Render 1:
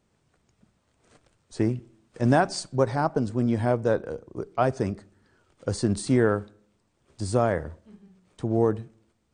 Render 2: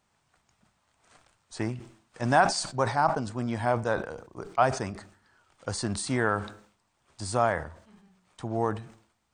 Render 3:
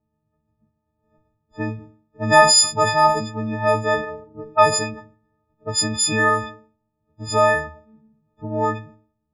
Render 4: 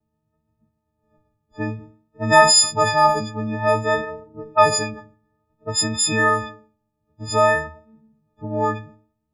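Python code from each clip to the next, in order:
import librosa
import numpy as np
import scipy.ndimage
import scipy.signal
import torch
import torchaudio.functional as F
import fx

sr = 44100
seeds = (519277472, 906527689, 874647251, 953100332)

y1 = fx.low_shelf_res(x, sr, hz=610.0, db=-8.0, q=1.5)
y1 = fx.sustainer(y1, sr, db_per_s=110.0)
y1 = y1 * 10.0 ** (1.5 / 20.0)
y2 = fx.freq_snap(y1, sr, grid_st=6)
y2 = fx.env_lowpass(y2, sr, base_hz=310.0, full_db=-17.5)
y2 = y2 * 10.0 ** (4.5 / 20.0)
y3 = fx.vibrato(y2, sr, rate_hz=0.55, depth_cents=20.0)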